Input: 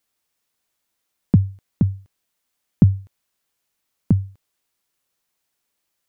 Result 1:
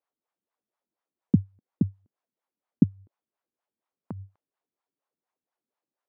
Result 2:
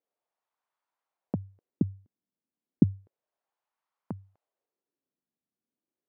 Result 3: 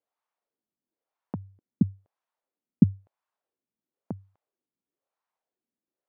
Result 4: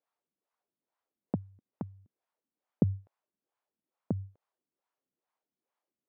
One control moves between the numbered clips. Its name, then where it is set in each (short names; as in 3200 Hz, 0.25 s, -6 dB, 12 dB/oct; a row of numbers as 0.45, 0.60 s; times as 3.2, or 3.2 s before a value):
wah, rate: 4.2, 0.32, 1, 2.3 Hz